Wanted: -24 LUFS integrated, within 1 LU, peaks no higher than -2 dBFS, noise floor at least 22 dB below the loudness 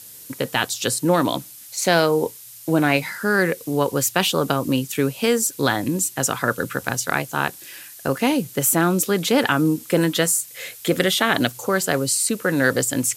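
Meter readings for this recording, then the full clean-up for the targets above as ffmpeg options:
noise floor -42 dBFS; noise floor target -43 dBFS; loudness -20.5 LUFS; peak level -3.0 dBFS; loudness target -24.0 LUFS
-> -af "afftdn=nr=6:nf=-42"
-af "volume=0.668"

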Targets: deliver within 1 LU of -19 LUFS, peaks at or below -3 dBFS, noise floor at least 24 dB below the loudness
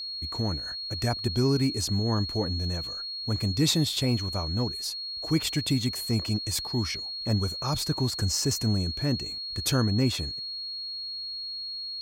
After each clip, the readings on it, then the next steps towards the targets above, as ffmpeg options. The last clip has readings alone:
steady tone 4.3 kHz; tone level -33 dBFS; loudness -28.0 LUFS; peak level -12.0 dBFS; loudness target -19.0 LUFS
-> -af "bandreject=f=4300:w=30"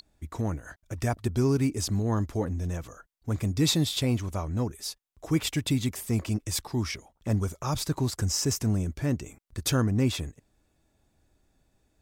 steady tone not found; loudness -28.5 LUFS; peak level -13.5 dBFS; loudness target -19.0 LUFS
-> -af "volume=2.99"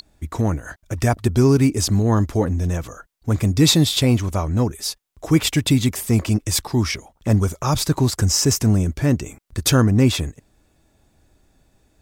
loudness -19.0 LUFS; peak level -4.0 dBFS; noise floor -62 dBFS

